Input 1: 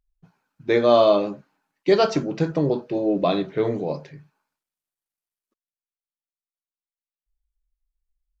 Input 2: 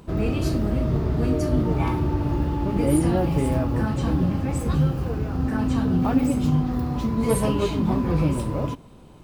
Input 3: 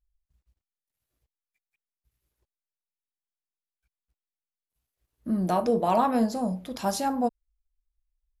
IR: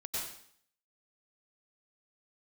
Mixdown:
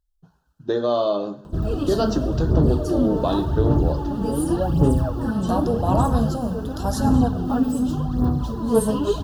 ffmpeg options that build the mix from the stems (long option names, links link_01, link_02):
-filter_complex "[0:a]acompressor=threshold=-22dB:ratio=2.5,volume=1dB,asplit=2[link_01][link_02];[link_02]volume=-19.5dB[link_03];[1:a]aphaser=in_gain=1:out_gain=1:delay=4.6:decay=0.62:speed=0.88:type=sinusoidal,adelay=1450,volume=-2.5dB[link_04];[2:a]volume=-0.5dB,asplit=2[link_05][link_06];[link_06]volume=-15.5dB[link_07];[3:a]atrim=start_sample=2205[link_08];[link_03][link_07]amix=inputs=2:normalize=0[link_09];[link_09][link_08]afir=irnorm=-1:irlink=0[link_10];[link_01][link_04][link_05][link_10]amix=inputs=4:normalize=0,asuperstop=centerf=2200:order=4:qfactor=1.7"